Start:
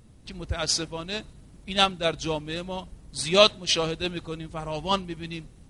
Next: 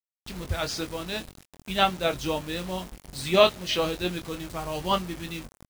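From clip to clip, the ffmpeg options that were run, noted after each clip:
-filter_complex "[0:a]acrossover=split=3100[a][b];[b]acompressor=threshold=-35dB:ratio=4:attack=1:release=60[c];[a][c]amix=inputs=2:normalize=0,acrusher=bits=6:mix=0:aa=0.000001,asplit=2[d][e];[e]adelay=22,volume=-7.5dB[f];[d][f]amix=inputs=2:normalize=0"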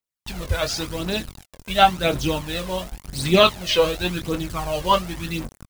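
-af "aphaser=in_gain=1:out_gain=1:delay=2.1:decay=0.52:speed=0.92:type=triangular,volume=4.5dB"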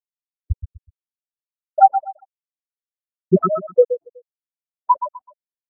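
-filter_complex "[0:a]afftfilt=real='re*gte(hypot(re,im),1.41)':imag='im*gte(hypot(re,im),1.41)':win_size=1024:overlap=0.75,asplit=2[a][b];[b]aecho=0:1:124|248|372:0.299|0.0866|0.0251[c];[a][c]amix=inputs=2:normalize=0,afftfilt=real='re*(1-between(b*sr/1024,470*pow(2700/470,0.5+0.5*sin(2*PI*3.4*pts/sr))/1.41,470*pow(2700/470,0.5+0.5*sin(2*PI*3.4*pts/sr))*1.41))':imag='im*(1-between(b*sr/1024,470*pow(2700/470,0.5+0.5*sin(2*PI*3.4*pts/sr))/1.41,470*pow(2700/470,0.5+0.5*sin(2*PI*3.4*pts/sr))*1.41))':win_size=1024:overlap=0.75,volume=6dB"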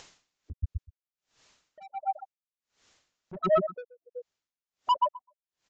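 -af "acompressor=mode=upward:threshold=-12dB:ratio=2.5,aresample=16000,asoftclip=type=tanh:threshold=-14dB,aresample=44100,aeval=exprs='val(0)*pow(10,-32*(0.5-0.5*cos(2*PI*1.4*n/s))/20)':c=same"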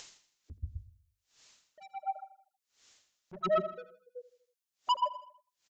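-af "highshelf=f=2.5k:g=11.5,bandreject=f=50:t=h:w=6,bandreject=f=100:t=h:w=6,bandreject=f=150:t=h:w=6,bandreject=f=200:t=h:w=6,aecho=1:1:80|160|240|320:0.158|0.0777|0.0381|0.0186,volume=-6dB"

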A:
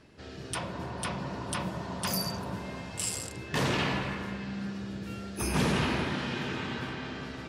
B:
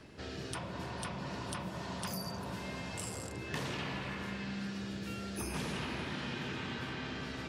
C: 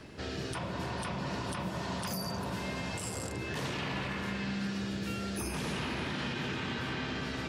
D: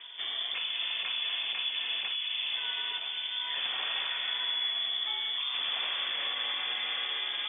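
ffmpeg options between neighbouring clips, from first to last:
-filter_complex "[0:a]acrossover=split=200|1800[a][b][c];[a]acompressor=threshold=-48dB:ratio=4[d];[b]acompressor=threshold=-46dB:ratio=4[e];[c]acompressor=threshold=-48dB:ratio=4[f];[d][e][f]amix=inputs=3:normalize=0,volume=3dB"
-af "alimiter=level_in=7.5dB:limit=-24dB:level=0:latency=1:release=28,volume=-7.5dB,volume=5dB"
-af "lowpass=f=3.1k:t=q:w=0.5098,lowpass=f=3.1k:t=q:w=0.6013,lowpass=f=3.1k:t=q:w=0.9,lowpass=f=3.1k:t=q:w=2.563,afreqshift=-3600,aemphasis=mode=production:type=bsi"

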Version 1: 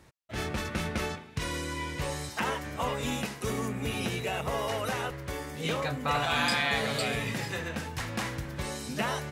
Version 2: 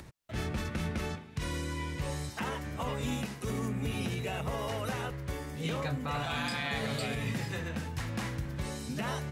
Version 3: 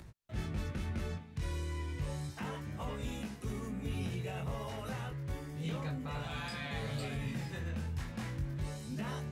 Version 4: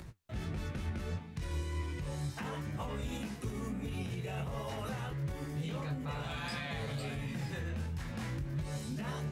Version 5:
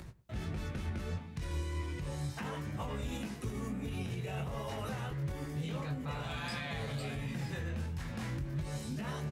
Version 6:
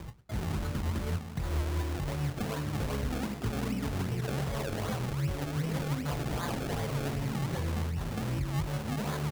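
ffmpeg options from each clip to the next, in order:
-filter_complex "[0:a]acrossover=split=260|1000[a][b][c];[a]acontrast=74[d];[d][b][c]amix=inputs=3:normalize=0,alimiter=limit=-19.5dB:level=0:latency=1:release=62,acompressor=mode=upward:threshold=-37dB:ratio=2.5,volume=-4.5dB"
-filter_complex "[0:a]flanger=delay=18.5:depth=4.8:speed=0.32,asplit=2[a][b];[b]asoftclip=type=tanh:threshold=-34dB,volume=-6dB[c];[a][c]amix=inputs=2:normalize=0,lowshelf=f=210:g=8,volume=-7.5dB"
-af "alimiter=level_in=10.5dB:limit=-24dB:level=0:latency=1:release=102,volume=-10.5dB,flanger=delay=5.4:depth=9.8:regen=70:speed=1.5:shape=sinusoidal,volume=8.5dB"
-filter_complex "[0:a]asplit=2[a][b];[b]adelay=106,lowpass=f=1.3k:p=1,volume=-16.5dB,asplit=2[c][d];[d]adelay=106,lowpass=f=1.3k:p=1,volume=0.28,asplit=2[e][f];[f]adelay=106,lowpass=f=1.3k:p=1,volume=0.28[g];[a][c][e][g]amix=inputs=4:normalize=0"
-af "acrusher=samples=31:mix=1:aa=0.000001:lfo=1:lforange=31:lforate=2.6,volume=5.5dB"

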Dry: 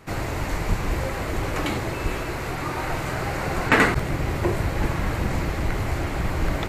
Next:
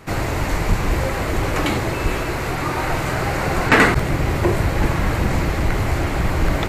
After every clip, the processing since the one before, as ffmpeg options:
-af "acontrast=73,volume=-1dB"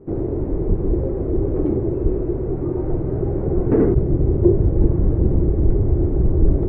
-af "asubboost=boost=2:cutoff=170,lowpass=f=380:t=q:w=3.9,volume=-3.5dB"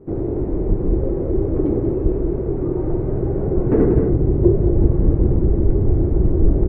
-af "aecho=1:1:186.6|239.1:0.447|0.282"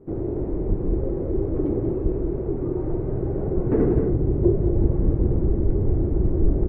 -af "flanger=delay=2.3:depth=9.4:regen=89:speed=2:shape=triangular"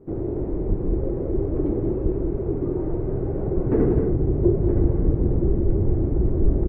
-af "aecho=1:1:970:0.316"

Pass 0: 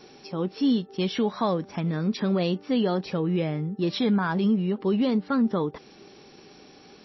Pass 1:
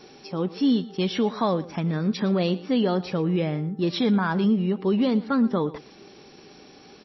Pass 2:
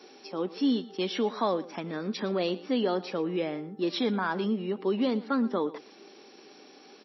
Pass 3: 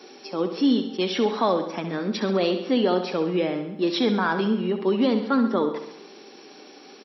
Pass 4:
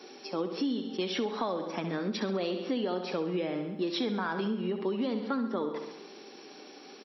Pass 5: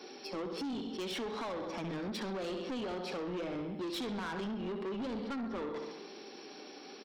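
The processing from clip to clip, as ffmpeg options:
-af "aecho=1:1:116:0.126,volume=1.5dB"
-af "highpass=f=240:w=0.5412,highpass=f=240:w=1.3066,volume=-3dB"
-af "aecho=1:1:67|134|201|268|335|402|469:0.316|0.18|0.103|0.0586|0.0334|0.019|0.0108,volume=5.5dB"
-af "acompressor=threshold=-25dB:ratio=6,volume=-3dB"
-af "asoftclip=type=tanh:threshold=-35dB"

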